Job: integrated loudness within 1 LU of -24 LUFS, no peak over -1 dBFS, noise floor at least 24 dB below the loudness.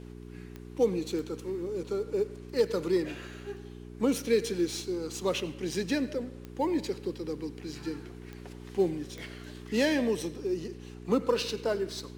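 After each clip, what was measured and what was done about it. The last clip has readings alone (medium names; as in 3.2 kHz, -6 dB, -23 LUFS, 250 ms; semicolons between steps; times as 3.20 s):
clicks found 5; hum 60 Hz; highest harmonic 420 Hz; hum level -43 dBFS; loudness -31.5 LUFS; peak level -14.5 dBFS; loudness target -24.0 LUFS
-> de-click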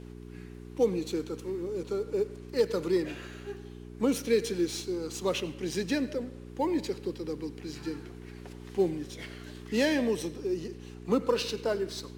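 clicks found 0; hum 60 Hz; highest harmonic 420 Hz; hum level -43 dBFS
-> de-hum 60 Hz, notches 7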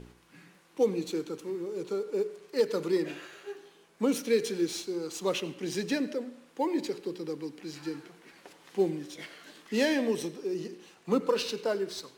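hum not found; loudness -31.5 LUFS; peak level -14.5 dBFS; loudness target -24.0 LUFS
-> trim +7.5 dB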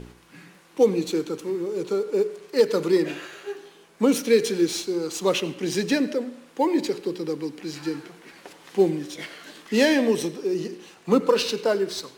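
loudness -24.0 LUFS; peak level -7.0 dBFS; noise floor -53 dBFS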